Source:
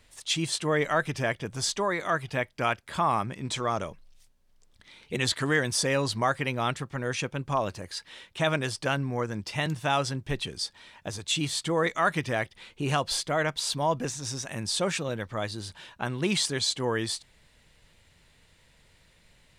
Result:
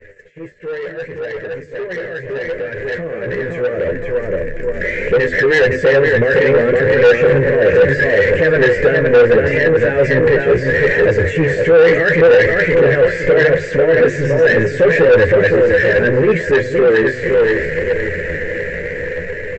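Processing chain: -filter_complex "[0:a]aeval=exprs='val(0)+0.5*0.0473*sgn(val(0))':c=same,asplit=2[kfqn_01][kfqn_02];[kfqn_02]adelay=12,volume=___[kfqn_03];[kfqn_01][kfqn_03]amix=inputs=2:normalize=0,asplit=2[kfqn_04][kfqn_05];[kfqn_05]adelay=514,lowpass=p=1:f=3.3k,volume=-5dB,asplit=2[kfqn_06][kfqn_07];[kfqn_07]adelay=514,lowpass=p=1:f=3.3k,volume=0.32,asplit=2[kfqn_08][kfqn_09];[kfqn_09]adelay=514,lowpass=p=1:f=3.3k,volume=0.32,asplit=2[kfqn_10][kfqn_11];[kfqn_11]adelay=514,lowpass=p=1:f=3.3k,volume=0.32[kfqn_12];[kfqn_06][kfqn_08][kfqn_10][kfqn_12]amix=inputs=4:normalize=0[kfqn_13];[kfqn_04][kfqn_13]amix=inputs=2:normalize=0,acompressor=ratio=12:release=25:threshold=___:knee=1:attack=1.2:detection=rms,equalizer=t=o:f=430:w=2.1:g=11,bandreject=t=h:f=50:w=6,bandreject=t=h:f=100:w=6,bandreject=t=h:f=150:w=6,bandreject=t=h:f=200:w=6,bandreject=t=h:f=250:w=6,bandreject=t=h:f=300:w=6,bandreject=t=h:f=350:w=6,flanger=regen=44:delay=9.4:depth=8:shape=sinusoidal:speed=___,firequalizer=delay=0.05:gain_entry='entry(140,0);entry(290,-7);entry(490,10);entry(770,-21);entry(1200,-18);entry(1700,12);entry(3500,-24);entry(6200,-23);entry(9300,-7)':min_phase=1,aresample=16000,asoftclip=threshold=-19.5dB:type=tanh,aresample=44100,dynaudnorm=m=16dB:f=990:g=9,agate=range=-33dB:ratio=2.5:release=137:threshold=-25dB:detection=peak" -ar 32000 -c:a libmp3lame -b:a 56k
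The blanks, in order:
-8dB, -24dB, 0.72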